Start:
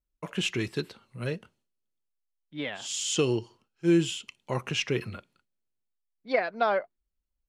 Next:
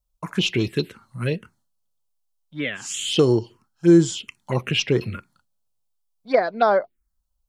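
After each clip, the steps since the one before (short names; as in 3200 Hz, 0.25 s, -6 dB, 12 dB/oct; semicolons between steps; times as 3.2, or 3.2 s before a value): envelope phaser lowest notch 320 Hz, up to 2700 Hz, full sweep at -23 dBFS; gain +9 dB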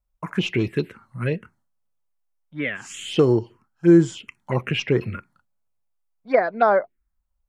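resonant high shelf 2800 Hz -8 dB, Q 1.5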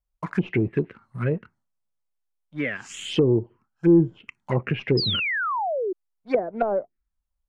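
sample leveller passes 1; treble ducked by the level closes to 470 Hz, closed at -13 dBFS; painted sound fall, 4.97–5.93, 350–5200 Hz -22 dBFS; gain -3.5 dB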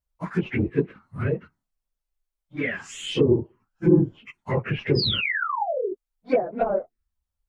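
phase scrambler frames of 50 ms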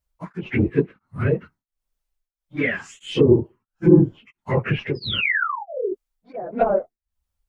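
beating tremolo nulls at 1.5 Hz; gain +5 dB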